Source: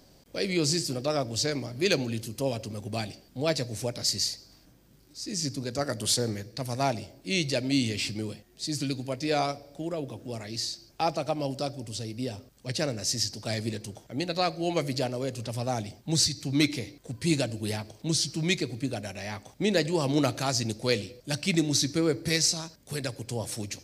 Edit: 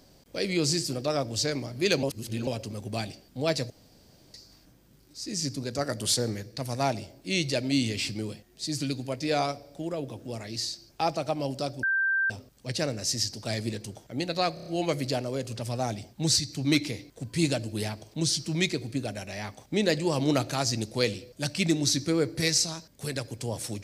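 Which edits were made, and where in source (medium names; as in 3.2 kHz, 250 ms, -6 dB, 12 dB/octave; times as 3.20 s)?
2.03–2.47 s: reverse
3.70–4.34 s: room tone
11.83–12.30 s: bleep 1.57 kHz -22.5 dBFS
14.54 s: stutter 0.03 s, 5 plays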